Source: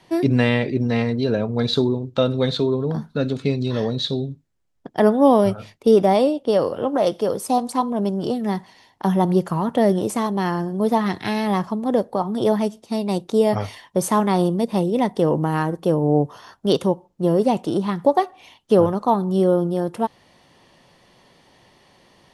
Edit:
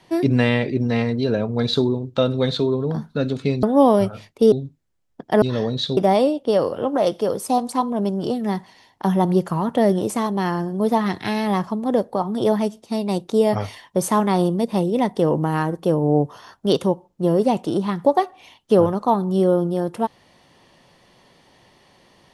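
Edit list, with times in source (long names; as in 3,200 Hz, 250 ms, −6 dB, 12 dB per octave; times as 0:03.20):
0:03.63–0:04.18: swap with 0:05.08–0:05.97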